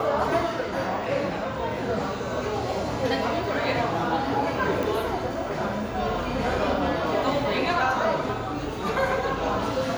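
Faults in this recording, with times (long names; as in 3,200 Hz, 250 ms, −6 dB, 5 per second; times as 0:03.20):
0:04.83: click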